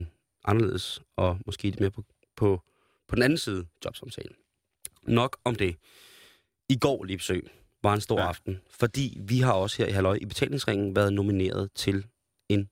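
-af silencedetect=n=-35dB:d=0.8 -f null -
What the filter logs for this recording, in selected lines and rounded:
silence_start: 5.74
silence_end: 6.70 | silence_duration: 0.96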